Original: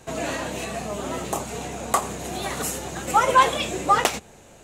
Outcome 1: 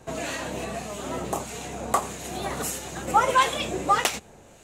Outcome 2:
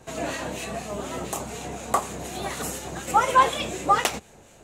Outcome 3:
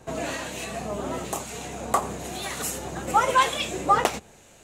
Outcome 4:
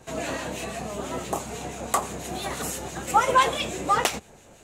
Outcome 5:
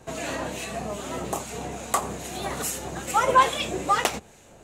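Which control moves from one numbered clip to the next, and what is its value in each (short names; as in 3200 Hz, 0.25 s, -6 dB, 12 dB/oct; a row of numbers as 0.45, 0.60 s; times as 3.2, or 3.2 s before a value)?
harmonic tremolo, rate: 1.6, 4.1, 1, 6, 2.4 Hz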